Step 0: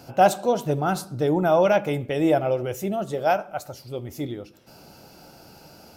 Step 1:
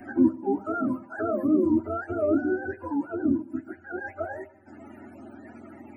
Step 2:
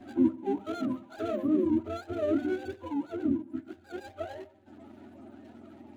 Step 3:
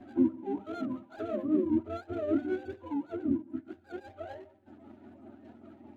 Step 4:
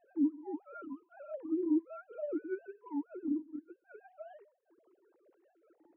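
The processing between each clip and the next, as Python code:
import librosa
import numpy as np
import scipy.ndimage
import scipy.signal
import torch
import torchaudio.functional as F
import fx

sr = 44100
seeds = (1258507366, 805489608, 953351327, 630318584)

y1 = fx.octave_mirror(x, sr, pivot_hz=440.0)
y1 = fx.fixed_phaser(y1, sr, hz=720.0, stages=8)
y1 = fx.band_squash(y1, sr, depth_pct=40)
y2 = scipy.ndimage.median_filter(y1, 25, mode='constant')
y2 = F.gain(torch.from_numpy(y2), -4.0).numpy()
y3 = fx.high_shelf(y2, sr, hz=3900.0, db=-11.5)
y3 = y3 * (1.0 - 0.46 / 2.0 + 0.46 / 2.0 * np.cos(2.0 * np.pi * 5.1 * (np.arange(len(y3)) / sr)))
y4 = fx.sine_speech(y3, sr)
y4 = F.gain(torch.from_numpy(y4), -5.0).numpy()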